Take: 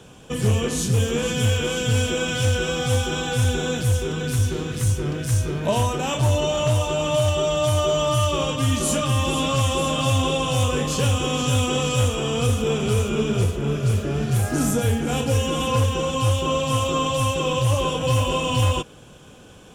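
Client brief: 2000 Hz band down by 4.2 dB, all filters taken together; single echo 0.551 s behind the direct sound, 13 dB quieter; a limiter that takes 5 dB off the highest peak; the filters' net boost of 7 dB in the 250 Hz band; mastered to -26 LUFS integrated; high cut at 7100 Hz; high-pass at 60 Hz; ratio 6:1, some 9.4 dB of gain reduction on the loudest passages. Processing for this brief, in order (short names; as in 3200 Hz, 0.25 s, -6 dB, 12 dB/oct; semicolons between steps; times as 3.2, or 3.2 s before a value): HPF 60 Hz; LPF 7100 Hz; bell 250 Hz +8.5 dB; bell 2000 Hz -6.5 dB; compressor 6:1, threshold -23 dBFS; limiter -19.5 dBFS; echo 0.551 s -13 dB; gain +2 dB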